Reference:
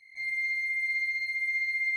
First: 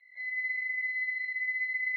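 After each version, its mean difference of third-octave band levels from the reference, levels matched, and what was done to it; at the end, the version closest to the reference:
2.5 dB: high-shelf EQ 2,200 Hz −6.5 dB
tape delay 114 ms, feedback 65%, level −5.5 dB, low-pass 2,100 Hz
single-sideband voice off tune −86 Hz 570–3,600 Hz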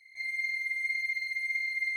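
1.5 dB: high-shelf EQ 2,400 Hz +8 dB
flanger 1.8 Hz, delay 1.3 ms, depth 2.7 ms, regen +51%
four-comb reverb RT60 1.8 s, combs from 26 ms, DRR 8.5 dB
level −1 dB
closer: second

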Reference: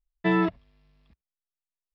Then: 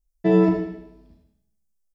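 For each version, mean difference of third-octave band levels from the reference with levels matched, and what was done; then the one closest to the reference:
6.5 dB: flat-topped bell 1,900 Hz −14 dB 2.5 octaves
mains-hum notches 60/120/180 Hz
on a send: repeating echo 80 ms, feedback 48%, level −12 dB
on the sum: four-comb reverb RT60 0.81 s, combs from 25 ms, DRR 0.5 dB
level +6 dB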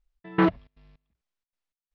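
9.0 dB: brickwall limiter −17.5 dBFS, peak gain reduction 5.5 dB
gate pattern "xx..xxx." 157 BPM −24 dB
high-frequency loss of the air 100 metres
highs frequency-modulated by the lows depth 0.18 ms
level +7.5 dB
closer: first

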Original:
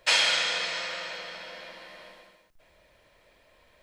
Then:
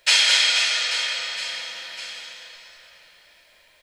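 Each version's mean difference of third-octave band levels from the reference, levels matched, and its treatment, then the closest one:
7.5 dB: tilt shelving filter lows −8 dB, about 1,200 Hz
notch filter 1,100 Hz, Q 11
reverse bouncing-ball delay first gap 210 ms, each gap 1.3×, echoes 5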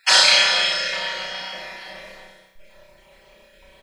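2.5 dB: time-frequency cells dropped at random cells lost 28%
comb filter 5.2 ms, depth 85%
on a send: flutter between parallel walls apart 5.5 metres, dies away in 0.71 s
on the sum: level +5.5 dB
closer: second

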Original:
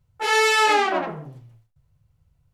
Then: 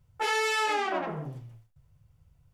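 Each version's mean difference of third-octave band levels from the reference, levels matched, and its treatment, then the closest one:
3.0 dB: notch filter 4,100 Hz, Q 17
downward compressor 3 to 1, threshold −30 dBFS, peak gain reduction 11.5 dB
level +1.5 dB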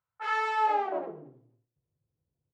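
6.0 dB: single-tap delay 224 ms −22 dB
band-pass filter sweep 1,300 Hz → 350 Hz, 0:00.30–0:01.21
level −3 dB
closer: first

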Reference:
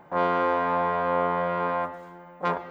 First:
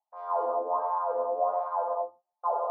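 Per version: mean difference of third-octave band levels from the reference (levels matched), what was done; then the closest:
13.0 dB: noise gate −35 dBFS, range −37 dB
drawn EQ curve 120 Hz 0 dB, 180 Hz −21 dB, 710 Hz +15 dB, 1,200 Hz +3 dB, 2,000 Hz −27 dB, 5,000 Hz +4 dB
LFO wah 1.4 Hz 230–2,200 Hz, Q 5.3
reverb whose tail is shaped and stops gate 260 ms flat, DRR −3 dB
level −5.5 dB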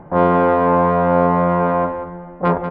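4.5 dB: adaptive Wiener filter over 9 samples
single-tap delay 187 ms −10 dB
downsampling to 11,025 Hz
spectral tilt −3.5 dB per octave
level +7.5 dB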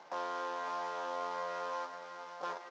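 8.0 dB: variable-slope delta modulation 32 kbit/s
Bessel high-pass filter 590 Hz, order 2
downward compressor 2.5 to 1, threshold −39 dBFS, peak gain reduction 11 dB
on a send: single-tap delay 557 ms −9 dB
on the sum: level −1.5 dB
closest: second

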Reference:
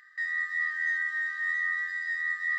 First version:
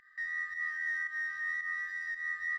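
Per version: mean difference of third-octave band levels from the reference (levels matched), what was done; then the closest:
2.0 dB: in parallel at −8 dB: soft clipping −37 dBFS, distortion −8 dB
on the sum: spectral tilt −3 dB per octave
far-end echo of a speakerphone 330 ms, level −17 dB
fake sidechain pumping 112 BPM, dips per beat 1, −9 dB, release 144 ms
level −4 dB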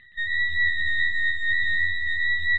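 6.5 dB: expanding power law on the bin magnitudes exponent 4
half-wave rectification
low-pass with resonance 2,700 Hz, resonance Q 6
bouncing-ball delay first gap 120 ms, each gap 0.75×, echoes 5
level +4.5 dB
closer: first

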